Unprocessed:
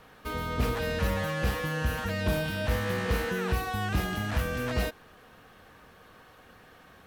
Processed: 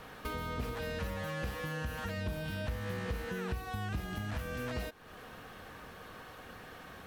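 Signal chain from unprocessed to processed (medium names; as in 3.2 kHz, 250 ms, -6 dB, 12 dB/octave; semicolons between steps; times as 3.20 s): 2.17–4.36 s: bass shelf 150 Hz +6 dB; compression 4:1, threshold -42 dBFS, peak gain reduction 19.5 dB; trim +4.5 dB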